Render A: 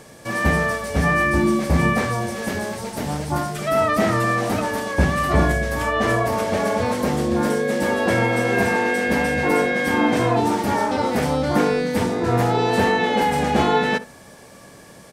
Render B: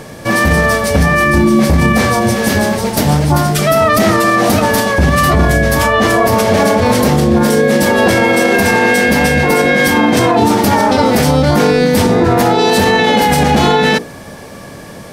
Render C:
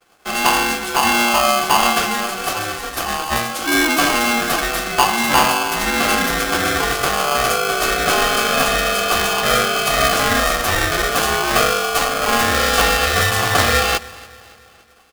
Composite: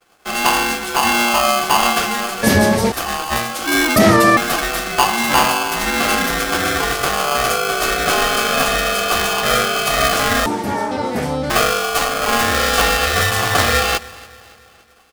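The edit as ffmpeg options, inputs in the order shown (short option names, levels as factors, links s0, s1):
-filter_complex "[1:a]asplit=2[s0][s1];[2:a]asplit=4[s2][s3][s4][s5];[s2]atrim=end=2.432[s6];[s0]atrim=start=2.428:end=2.922[s7];[s3]atrim=start=2.918:end=3.962[s8];[s1]atrim=start=3.958:end=4.372[s9];[s4]atrim=start=4.368:end=10.462[s10];[0:a]atrim=start=10.458:end=11.502[s11];[s5]atrim=start=11.498[s12];[s6][s7]acrossfade=d=0.004:c1=hsin:c2=hsin[s13];[s13][s8]acrossfade=d=0.004:c1=hsin:c2=hsin[s14];[s14][s9]acrossfade=d=0.004:c1=hsin:c2=hsin[s15];[s15][s10]acrossfade=d=0.004:c1=hsin:c2=hsin[s16];[s16][s11]acrossfade=d=0.004:c1=hsin:c2=hsin[s17];[s17][s12]acrossfade=d=0.004:c1=hsin:c2=hsin"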